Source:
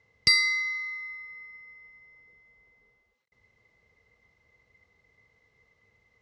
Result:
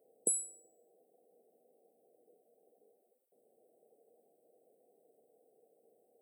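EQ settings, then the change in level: high-pass 300 Hz 24 dB/octave; brick-wall FIR band-stop 800–7800 Hz; treble shelf 8.2 kHz +7.5 dB; +7.0 dB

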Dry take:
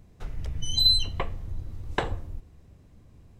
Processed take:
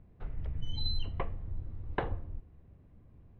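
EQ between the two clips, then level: distance through air 410 m; treble shelf 5.5 kHz -6.5 dB; -4.0 dB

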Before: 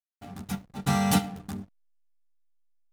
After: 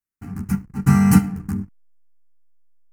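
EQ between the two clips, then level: bass shelf 450 Hz +9 dB; static phaser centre 1.5 kHz, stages 4; +5.0 dB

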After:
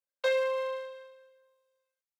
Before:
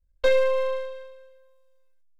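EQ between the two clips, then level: high-pass 540 Hz 24 dB/octave; -4.0 dB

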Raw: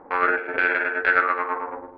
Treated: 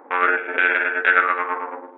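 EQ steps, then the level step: brick-wall FIR band-pass 210–3900 Hz; treble shelf 2.6 kHz +11.5 dB; 0.0 dB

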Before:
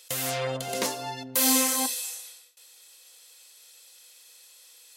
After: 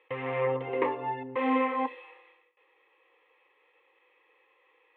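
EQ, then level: high-pass 120 Hz; inverse Chebyshev low-pass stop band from 6.2 kHz, stop band 60 dB; static phaser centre 990 Hz, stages 8; +6.0 dB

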